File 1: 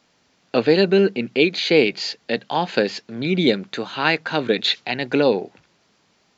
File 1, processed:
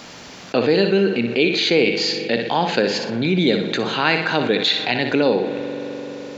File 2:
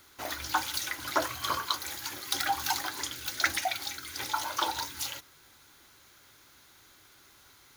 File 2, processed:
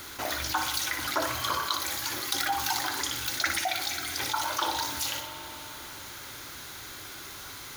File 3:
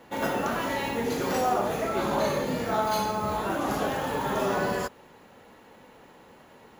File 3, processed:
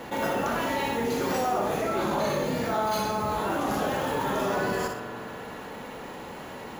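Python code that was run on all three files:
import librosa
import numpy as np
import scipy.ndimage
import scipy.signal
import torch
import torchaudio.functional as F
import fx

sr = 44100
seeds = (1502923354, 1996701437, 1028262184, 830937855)

y = fx.room_flutter(x, sr, wall_m=10.3, rt60_s=0.36)
y = fx.rev_spring(y, sr, rt60_s=3.0, pass_ms=(42,), chirp_ms=30, drr_db=15.5)
y = fx.env_flatten(y, sr, amount_pct=50)
y = y * librosa.db_to_amplitude(-2.5)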